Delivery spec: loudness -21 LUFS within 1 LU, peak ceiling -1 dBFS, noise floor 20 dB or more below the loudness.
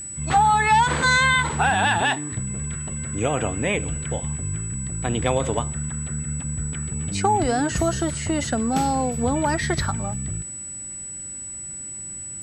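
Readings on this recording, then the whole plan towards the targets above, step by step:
steady tone 7900 Hz; tone level -32 dBFS; loudness -23.0 LUFS; peak -8.0 dBFS; loudness target -21.0 LUFS
-> notch 7900 Hz, Q 30; gain +2 dB

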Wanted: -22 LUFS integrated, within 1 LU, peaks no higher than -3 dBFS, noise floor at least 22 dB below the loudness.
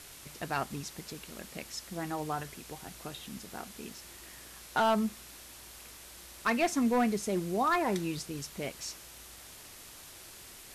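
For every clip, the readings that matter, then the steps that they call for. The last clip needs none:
clipped 0.3%; flat tops at -21.0 dBFS; noise floor -50 dBFS; noise floor target -56 dBFS; loudness -33.5 LUFS; peak -21.0 dBFS; loudness target -22.0 LUFS
-> clip repair -21 dBFS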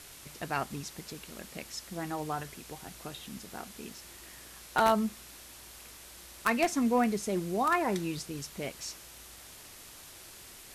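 clipped 0.0%; noise floor -50 dBFS; noise floor target -55 dBFS
-> denoiser 6 dB, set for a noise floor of -50 dBFS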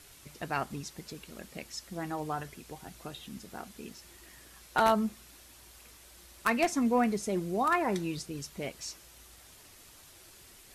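noise floor -55 dBFS; loudness -32.0 LUFS; peak -12.0 dBFS; loudness target -22.0 LUFS
-> gain +10 dB; limiter -3 dBFS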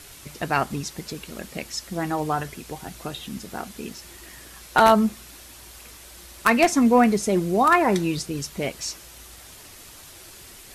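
loudness -22.0 LUFS; peak -3.0 dBFS; noise floor -45 dBFS

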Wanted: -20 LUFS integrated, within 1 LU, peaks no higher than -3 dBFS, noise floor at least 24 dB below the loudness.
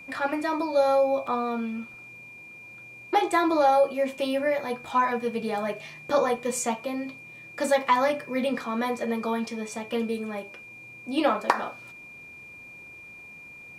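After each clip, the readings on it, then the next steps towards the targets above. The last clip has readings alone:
dropouts 1; longest dropout 3.2 ms; steady tone 2400 Hz; tone level -43 dBFS; loudness -26.5 LUFS; peak -4.5 dBFS; loudness target -20.0 LUFS
-> interpolate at 1.27, 3.2 ms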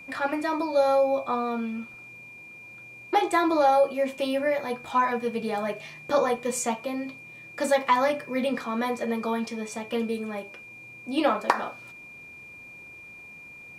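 dropouts 0; steady tone 2400 Hz; tone level -43 dBFS
-> notch 2400 Hz, Q 30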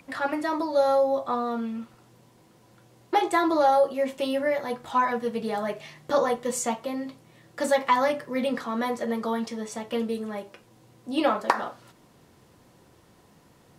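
steady tone none; loudness -26.5 LUFS; peak -4.5 dBFS; loudness target -20.0 LUFS
-> gain +6.5 dB; limiter -3 dBFS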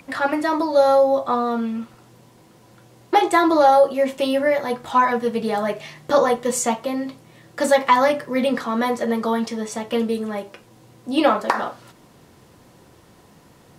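loudness -20.0 LUFS; peak -3.0 dBFS; noise floor -52 dBFS

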